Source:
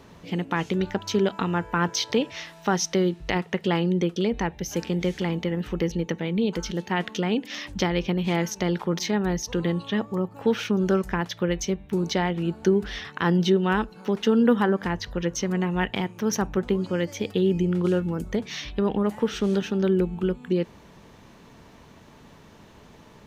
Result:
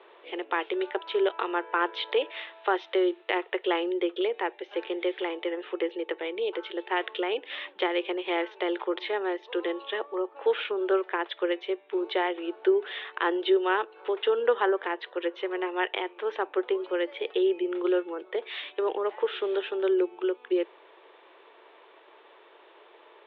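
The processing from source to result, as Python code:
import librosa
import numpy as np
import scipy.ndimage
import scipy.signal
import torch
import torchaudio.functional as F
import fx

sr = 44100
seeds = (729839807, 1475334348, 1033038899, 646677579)

y = scipy.signal.sosfilt(scipy.signal.cheby1(5, 1.0, [350.0, 3600.0], 'bandpass', fs=sr, output='sos'), x)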